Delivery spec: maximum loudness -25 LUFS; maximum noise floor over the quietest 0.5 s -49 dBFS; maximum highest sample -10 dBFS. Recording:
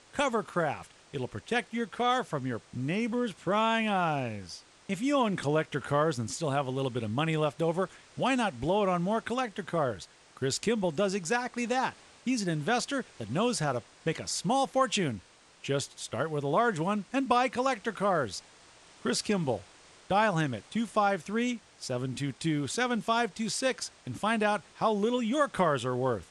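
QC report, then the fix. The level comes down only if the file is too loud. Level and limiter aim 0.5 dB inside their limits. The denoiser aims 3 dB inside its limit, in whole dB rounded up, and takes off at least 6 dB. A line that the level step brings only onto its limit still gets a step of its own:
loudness -30.0 LUFS: OK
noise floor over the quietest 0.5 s -56 dBFS: OK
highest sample -12.5 dBFS: OK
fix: none

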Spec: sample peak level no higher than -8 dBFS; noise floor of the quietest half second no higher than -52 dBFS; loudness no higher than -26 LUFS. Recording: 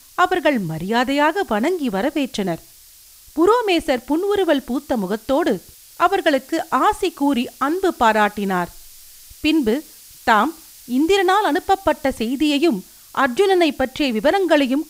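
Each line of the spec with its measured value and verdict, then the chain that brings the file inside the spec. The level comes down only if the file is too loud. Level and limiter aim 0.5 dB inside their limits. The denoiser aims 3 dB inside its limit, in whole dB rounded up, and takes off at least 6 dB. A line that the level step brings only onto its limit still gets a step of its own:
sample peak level -2.5 dBFS: fail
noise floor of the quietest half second -46 dBFS: fail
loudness -19.0 LUFS: fail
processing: gain -7.5 dB

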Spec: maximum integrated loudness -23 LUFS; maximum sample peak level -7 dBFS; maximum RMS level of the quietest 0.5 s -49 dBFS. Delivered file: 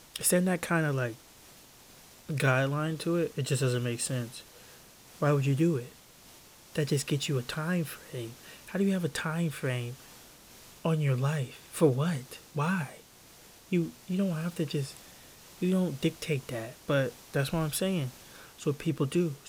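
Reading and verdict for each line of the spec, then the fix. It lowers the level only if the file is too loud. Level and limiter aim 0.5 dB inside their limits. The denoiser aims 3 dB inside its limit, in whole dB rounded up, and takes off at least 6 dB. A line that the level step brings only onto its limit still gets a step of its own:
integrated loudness -30.5 LUFS: OK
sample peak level -12.0 dBFS: OK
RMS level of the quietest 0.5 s -55 dBFS: OK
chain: none

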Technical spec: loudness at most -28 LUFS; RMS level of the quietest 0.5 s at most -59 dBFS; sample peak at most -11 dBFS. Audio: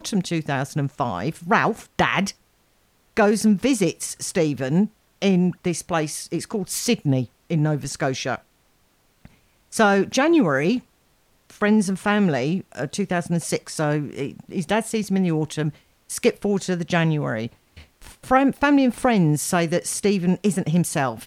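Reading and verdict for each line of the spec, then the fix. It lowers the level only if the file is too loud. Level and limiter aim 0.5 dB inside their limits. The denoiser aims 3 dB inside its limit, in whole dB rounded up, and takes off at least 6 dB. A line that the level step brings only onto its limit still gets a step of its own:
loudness -22.0 LUFS: fail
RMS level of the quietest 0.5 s -62 dBFS: OK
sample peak -4.5 dBFS: fail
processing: gain -6.5 dB; limiter -11.5 dBFS

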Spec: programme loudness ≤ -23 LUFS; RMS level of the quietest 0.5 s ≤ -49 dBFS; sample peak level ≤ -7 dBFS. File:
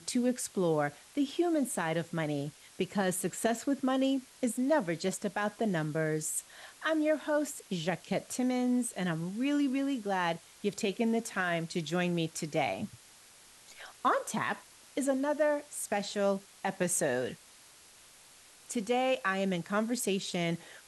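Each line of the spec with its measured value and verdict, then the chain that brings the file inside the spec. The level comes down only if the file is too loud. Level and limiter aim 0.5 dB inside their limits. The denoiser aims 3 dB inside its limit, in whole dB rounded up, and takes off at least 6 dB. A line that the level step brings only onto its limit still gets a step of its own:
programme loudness -32.0 LUFS: OK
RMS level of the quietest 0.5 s -57 dBFS: OK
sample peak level -17.5 dBFS: OK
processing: none

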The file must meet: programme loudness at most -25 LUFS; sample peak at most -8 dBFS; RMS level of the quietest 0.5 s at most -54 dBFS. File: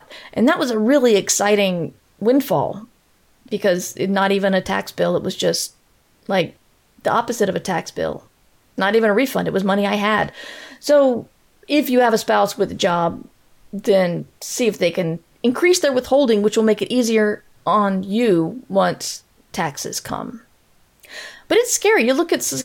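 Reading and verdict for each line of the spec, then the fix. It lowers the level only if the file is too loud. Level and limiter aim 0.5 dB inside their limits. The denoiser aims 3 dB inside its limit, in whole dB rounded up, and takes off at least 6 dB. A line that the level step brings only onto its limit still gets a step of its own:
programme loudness -18.5 LUFS: fail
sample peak -5.5 dBFS: fail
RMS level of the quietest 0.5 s -57 dBFS: OK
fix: gain -7 dB

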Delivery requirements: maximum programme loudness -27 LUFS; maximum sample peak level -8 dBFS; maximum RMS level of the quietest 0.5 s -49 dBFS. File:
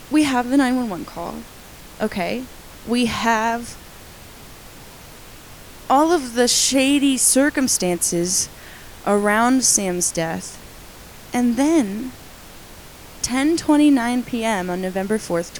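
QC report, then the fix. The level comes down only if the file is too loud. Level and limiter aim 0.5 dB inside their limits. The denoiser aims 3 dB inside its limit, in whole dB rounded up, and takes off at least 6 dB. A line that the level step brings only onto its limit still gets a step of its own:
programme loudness -18.5 LUFS: fail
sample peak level -3.0 dBFS: fail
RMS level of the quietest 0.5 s -41 dBFS: fail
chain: gain -9 dB

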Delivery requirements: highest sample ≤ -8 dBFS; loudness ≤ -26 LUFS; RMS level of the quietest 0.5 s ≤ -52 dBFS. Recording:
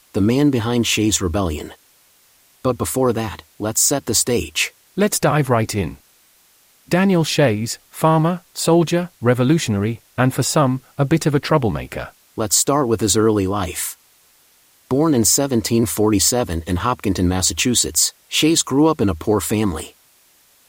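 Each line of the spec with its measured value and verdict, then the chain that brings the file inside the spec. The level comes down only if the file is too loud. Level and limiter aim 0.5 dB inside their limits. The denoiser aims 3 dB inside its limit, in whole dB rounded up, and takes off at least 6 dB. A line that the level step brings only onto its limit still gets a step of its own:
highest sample -4.5 dBFS: fail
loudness -18.0 LUFS: fail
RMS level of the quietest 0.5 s -55 dBFS: OK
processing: gain -8.5 dB

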